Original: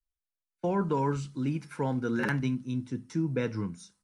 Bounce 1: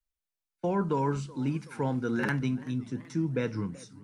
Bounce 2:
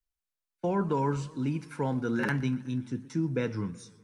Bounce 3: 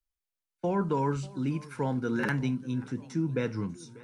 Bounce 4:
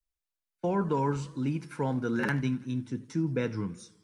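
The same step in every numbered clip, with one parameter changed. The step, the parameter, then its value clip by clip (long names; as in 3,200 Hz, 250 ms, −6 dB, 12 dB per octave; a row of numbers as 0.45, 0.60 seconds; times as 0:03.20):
feedback echo with a swinging delay time, delay time: 381, 123, 589, 83 milliseconds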